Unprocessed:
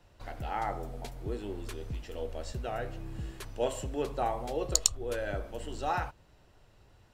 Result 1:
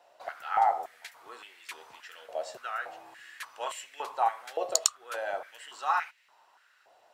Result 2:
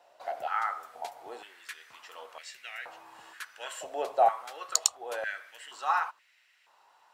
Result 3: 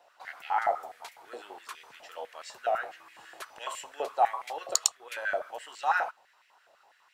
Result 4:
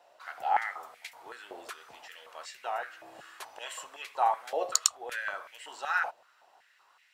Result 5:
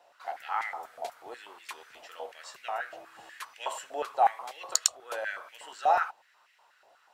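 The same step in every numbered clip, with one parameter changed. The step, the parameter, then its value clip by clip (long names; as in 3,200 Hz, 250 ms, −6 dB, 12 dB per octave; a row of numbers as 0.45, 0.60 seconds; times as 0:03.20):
high-pass on a step sequencer, speed: 3.5, 2.1, 12, 5.3, 8.2 Hertz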